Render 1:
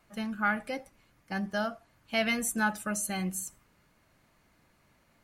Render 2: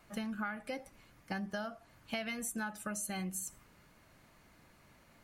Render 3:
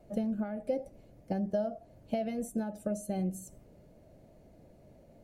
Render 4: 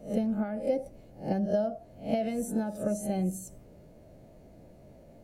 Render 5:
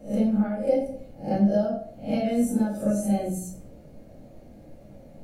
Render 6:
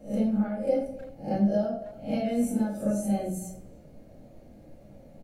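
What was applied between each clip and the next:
compression 12:1, threshold -39 dBFS, peak gain reduction 16.5 dB; trim +3.5 dB
FFT filter 300 Hz 0 dB, 620 Hz +5 dB, 1.1 kHz -21 dB, 5.9 kHz -15 dB; trim +7 dB
reverse spectral sustain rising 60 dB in 0.34 s; trim +3 dB
reverberation RT60 0.55 s, pre-delay 4 ms, DRR -2.5 dB
speakerphone echo 300 ms, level -17 dB; trim -3 dB

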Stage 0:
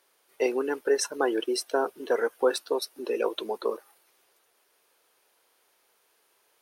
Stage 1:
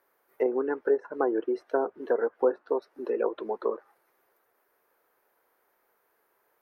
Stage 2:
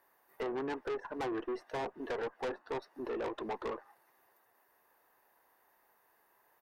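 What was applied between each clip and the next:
low-pass that closes with the level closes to 880 Hz, closed at -21 dBFS; high-order bell 5.1 kHz -15 dB 2.3 oct
comb 1.1 ms, depth 44%; valve stage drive 34 dB, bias 0.25; trim +1 dB

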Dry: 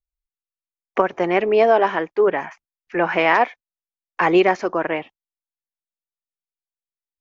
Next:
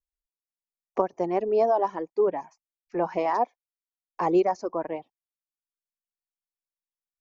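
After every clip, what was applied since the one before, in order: reverb removal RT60 1 s; high-order bell 2.2 kHz -14.5 dB; trim -5.5 dB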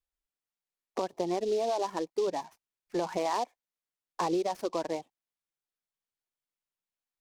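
peak limiter -17.5 dBFS, peak gain reduction 9.5 dB; compression, threshold -26 dBFS, peak gain reduction 6 dB; delay time shaken by noise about 4.2 kHz, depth 0.033 ms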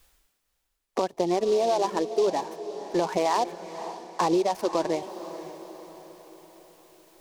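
reverse; upward compressor, threshold -46 dBFS; reverse; echo that smears into a reverb 518 ms, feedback 49%, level -12.5 dB; trim +6 dB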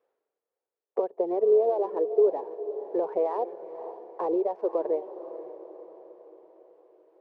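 ladder band-pass 500 Hz, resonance 65%; trim +6 dB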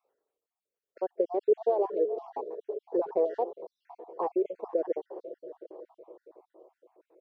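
random holes in the spectrogram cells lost 52%

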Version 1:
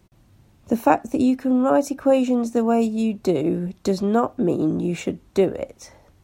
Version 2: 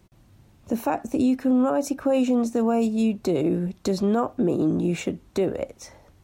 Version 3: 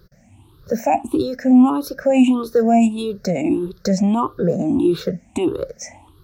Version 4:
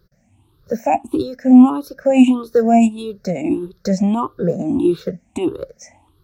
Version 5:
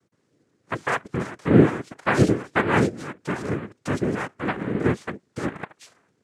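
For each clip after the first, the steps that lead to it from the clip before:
peak limiter -14 dBFS, peak gain reduction 11 dB
drifting ripple filter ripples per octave 0.6, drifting +1.6 Hz, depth 24 dB
upward expansion 1.5:1, over -31 dBFS; trim +4 dB
noise-vocoded speech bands 3; trim -7.5 dB

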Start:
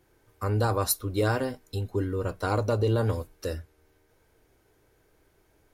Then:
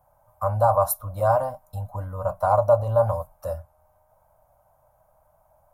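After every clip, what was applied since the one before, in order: FFT filter 170 Hz 0 dB, 410 Hz -30 dB, 580 Hz +14 dB, 1.1 kHz +9 dB, 1.8 kHz -13 dB, 4.2 kHz -17 dB, 13 kHz +3 dB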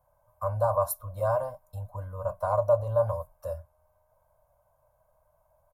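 comb 1.9 ms, depth 46%; trim -7.5 dB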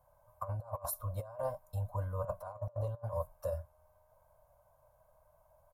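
compressor with a negative ratio -33 dBFS, ratio -0.5; trim -4.5 dB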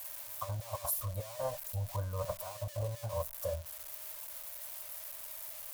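zero-crossing glitches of -34 dBFS

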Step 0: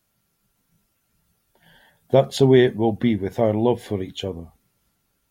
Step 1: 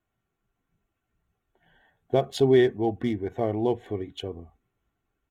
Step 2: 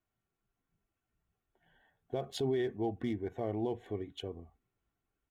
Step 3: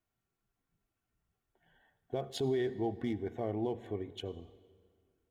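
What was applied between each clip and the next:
local Wiener filter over 9 samples; comb 2.7 ms, depth 44%; trim -6.5 dB
peak limiter -17.5 dBFS, peak gain reduction 8.5 dB; trim -7 dB
reverberation RT60 1.9 s, pre-delay 66 ms, DRR 17 dB

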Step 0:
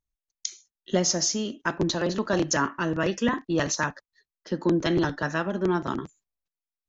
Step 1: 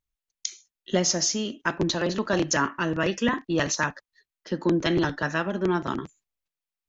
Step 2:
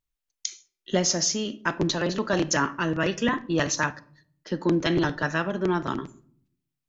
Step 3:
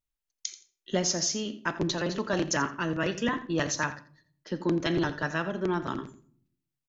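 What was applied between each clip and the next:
peaking EQ 2.5 kHz +4 dB 1.1 oct
simulated room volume 840 m³, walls furnished, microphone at 0.4 m
feedback delay 85 ms, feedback 16%, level -15 dB; trim -4 dB

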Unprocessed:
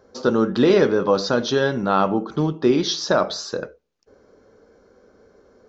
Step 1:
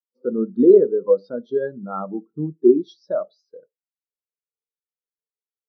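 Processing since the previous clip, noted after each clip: spectral contrast expander 2.5:1; trim +3 dB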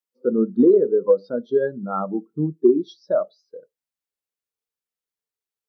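compression, threshold -14 dBFS, peak gain reduction 8 dB; trim +3 dB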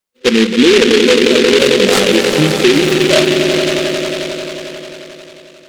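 echo with a slow build-up 89 ms, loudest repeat 5, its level -11 dB; loudness maximiser +12 dB; delay time shaken by noise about 2.6 kHz, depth 0.18 ms; trim -1 dB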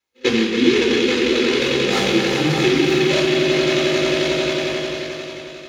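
compression 6:1, threshold -19 dBFS, peak gain reduction 13 dB; reverberation RT60 1.1 s, pre-delay 3 ms, DRR -0.5 dB; trim -5 dB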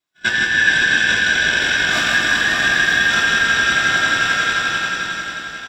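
every band turned upside down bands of 2 kHz; on a send: reverse bouncing-ball echo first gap 160 ms, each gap 1.1×, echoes 5; on the sum: trim -1 dB

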